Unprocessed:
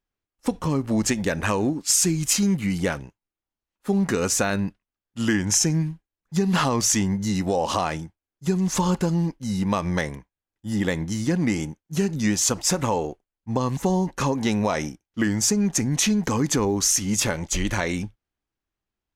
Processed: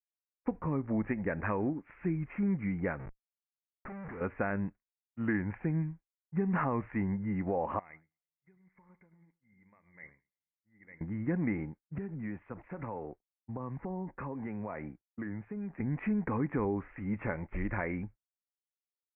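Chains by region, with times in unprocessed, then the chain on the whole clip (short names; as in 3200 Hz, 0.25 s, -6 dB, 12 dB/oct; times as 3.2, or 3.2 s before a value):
2.99–4.21 compressor 2:1, threshold -29 dBFS + Schmitt trigger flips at -44.5 dBFS
7.79–11.01 compressor 3:1, threshold -34 dBFS + ladder low-pass 2200 Hz, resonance 85% + echo with dull and thin repeats by turns 0.107 s, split 1900 Hz, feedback 56%, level -11 dB
11.98–15.8 compressor 5:1, threshold -26 dBFS + three-band expander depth 40%
whole clip: expander -37 dBFS; steep low-pass 2300 Hz 72 dB/oct; gain -9 dB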